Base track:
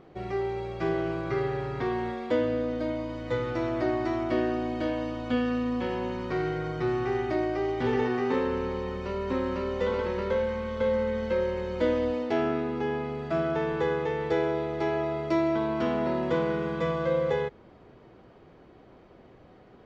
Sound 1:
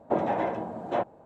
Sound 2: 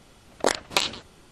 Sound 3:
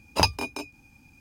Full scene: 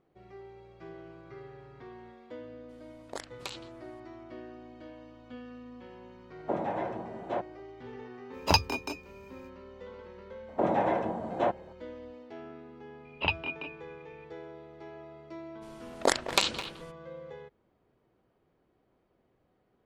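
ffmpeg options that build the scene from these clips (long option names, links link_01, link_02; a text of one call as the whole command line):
ffmpeg -i bed.wav -i cue0.wav -i cue1.wav -i cue2.wav -filter_complex "[2:a]asplit=2[link_01][link_02];[1:a]asplit=2[link_03][link_04];[3:a]asplit=2[link_05][link_06];[0:a]volume=-18.5dB[link_07];[link_01]alimiter=limit=-10dB:level=0:latency=1:release=434[link_08];[link_05]equalizer=frequency=9800:width=3.1:gain=-13.5[link_09];[link_04]alimiter=level_in=15dB:limit=-1dB:release=50:level=0:latency=1[link_10];[link_06]firequalizer=gain_entry='entry(1700,0);entry(2800,14);entry(5700,-30)':delay=0.05:min_phase=1[link_11];[link_02]asplit=2[link_12][link_13];[link_13]adelay=210,highpass=300,lowpass=3400,asoftclip=type=hard:threshold=-17dB,volume=-8dB[link_14];[link_12][link_14]amix=inputs=2:normalize=0[link_15];[link_08]atrim=end=1.31,asetpts=PTS-STARTPTS,volume=-15dB,afade=type=in:duration=0.004:curve=hsin,afade=type=out:start_time=1.306:duration=0.004:curve=hsin,adelay=2690[link_16];[link_03]atrim=end=1.25,asetpts=PTS-STARTPTS,volume=-5.5dB,afade=type=in:duration=0.004:curve=hsin,afade=type=out:start_time=1.246:duration=0.004:curve=hsin,adelay=6380[link_17];[link_09]atrim=end=1.2,asetpts=PTS-STARTPTS,volume=-1.5dB,afade=type=in:duration=0.05,afade=type=out:start_time=1.15:duration=0.05,adelay=8310[link_18];[link_10]atrim=end=1.25,asetpts=PTS-STARTPTS,volume=-14.5dB,afade=type=in:duration=0.004:curve=hsin,afade=type=out:start_time=1.246:duration=0.004:curve=hsin,adelay=10480[link_19];[link_11]atrim=end=1.2,asetpts=PTS-STARTPTS,volume=-10dB,afade=type=in:duration=0.004:curve=hsin,afade=type=out:start_time=1.196:duration=0.004:curve=hsin,adelay=13050[link_20];[link_15]atrim=end=1.31,asetpts=PTS-STARTPTS,volume=-2.5dB,afade=type=in:duration=0.02,afade=type=out:start_time=1.29:duration=0.02,adelay=15610[link_21];[link_07][link_16][link_17][link_18][link_19][link_20][link_21]amix=inputs=7:normalize=0" out.wav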